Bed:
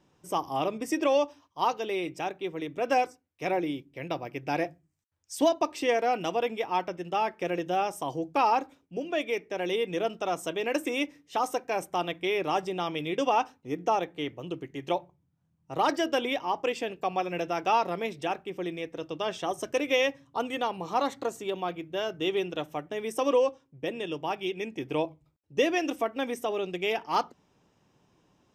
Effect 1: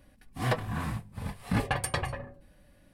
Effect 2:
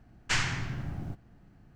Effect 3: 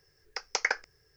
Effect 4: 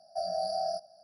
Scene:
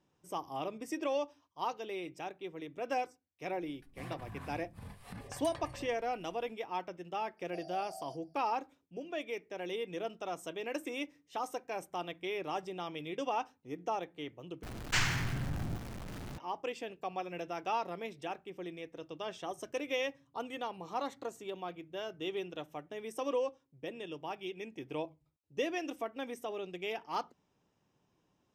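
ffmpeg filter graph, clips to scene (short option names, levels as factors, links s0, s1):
-filter_complex "[0:a]volume=0.335[s0];[1:a]acompressor=threshold=0.0158:ratio=6:attack=3.2:release=140:knee=1:detection=peak[s1];[2:a]aeval=exprs='val(0)+0.5*0.0168*sgn(val(0))':c=same[s2];[s0]asplit=2[s3][s4];[s3]atrim=end=14.634[s5];[s2]atrim=end=1.75,asetpts=PTS-STARTPTS,volume=0.708[s6];[s4]atrim=start=16.376[s7];[s1]atrim=end=2.93,asetpts=PTS-STARTPTS,volume=0.447,afade=t=in:d=0.004:c=hsin,afade=t=out:st=2.926:d=0.004:c=hsin,adelay=159201S[s8];[4:a]atrim=end=1.03,asetpts=PTS-STARTPTS,volume=0.158,afade=t=in:d=0.004:c=hsin,afade=t=out:st=1.026:d=0.004:c=hsin,adelay=7370[s9];[s5][s6]acrossfade=d=0.004:c1=hsin:c2=hsin[s10];[s10][s7]acrossfade=d=0.004:c1=hsin:c2=hsin[s11];[s11][s8][s9]amix=inputs=3:normalize=0"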